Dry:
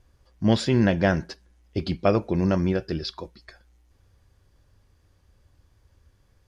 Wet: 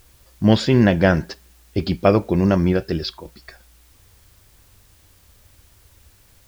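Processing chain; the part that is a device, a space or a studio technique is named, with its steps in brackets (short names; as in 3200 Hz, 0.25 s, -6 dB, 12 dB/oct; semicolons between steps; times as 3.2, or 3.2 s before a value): worn cassette (LPF 6400 Hz; wow and flutter; level dips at 3.18, 69 ms -7 dB; white noise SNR 35 dB); gain +5.5 dB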